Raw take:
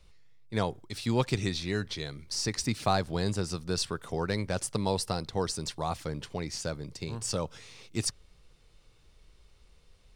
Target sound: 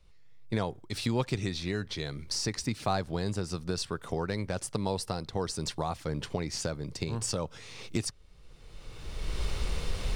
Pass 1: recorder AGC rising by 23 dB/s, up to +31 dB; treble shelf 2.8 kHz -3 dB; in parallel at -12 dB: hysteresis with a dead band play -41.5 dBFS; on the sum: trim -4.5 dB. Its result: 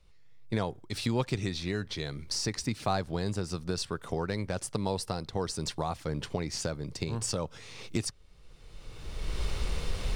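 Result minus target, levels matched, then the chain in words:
hysteresis with a dead band: distortion +9 dB
recorder AGC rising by 23 dB/s, up to +31 dB; treble shelf 2.8 kHz -3 dB; in parallel at -12 dB: hysteresis with a dead band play -51 dBFS; on the sum: trim -4.5 dB

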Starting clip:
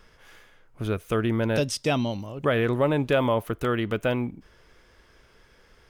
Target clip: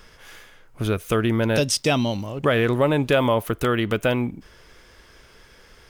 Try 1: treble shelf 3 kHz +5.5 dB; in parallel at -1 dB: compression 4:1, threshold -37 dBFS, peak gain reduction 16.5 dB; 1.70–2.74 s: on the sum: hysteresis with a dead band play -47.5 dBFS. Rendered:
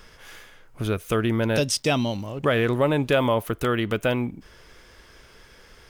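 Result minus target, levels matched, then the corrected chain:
compression: peak gain reduction +8.5 dB
treble shelf 3 kHz +5.5 dB; in parallel at -1 dB: compression 4:1, threshold -26 dBFS, peak gain reduction 8 dB; 1.70–2.74 s: on the sum: hysteresis with a dead band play -47.5 dBFS

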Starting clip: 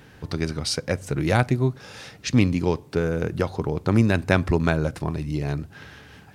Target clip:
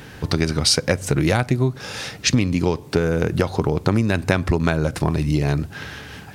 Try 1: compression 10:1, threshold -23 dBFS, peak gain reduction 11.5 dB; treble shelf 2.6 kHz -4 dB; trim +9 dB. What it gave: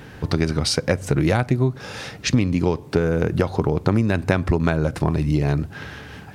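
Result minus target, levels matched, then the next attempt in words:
4 kHz band -4.5 dB
compression 10:1, threshold -23 dBFS, peak gain reduction 11.5 dB; treble shelf 2.6 kHz +3 dB; trim +9 dB

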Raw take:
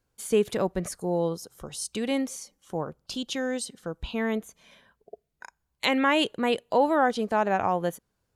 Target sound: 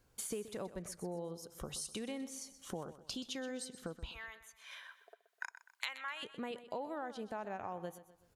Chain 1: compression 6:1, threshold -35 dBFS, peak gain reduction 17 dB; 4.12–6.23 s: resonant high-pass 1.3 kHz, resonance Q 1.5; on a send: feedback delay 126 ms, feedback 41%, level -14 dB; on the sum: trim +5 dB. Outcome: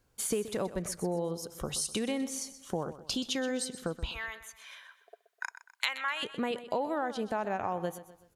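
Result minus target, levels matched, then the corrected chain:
compression: peak gain reduction -9.5 dB
compression 6:1, threshold -46.5 dBFS, peak gain reduction 26.5 dB; 4.12–6.23 s: resonant high-pass 1.3 kHz, resonance Q 1.5; on a send: feedback delay 126 ms, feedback 41%, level -14 dB; on the sum: trim +5 dB

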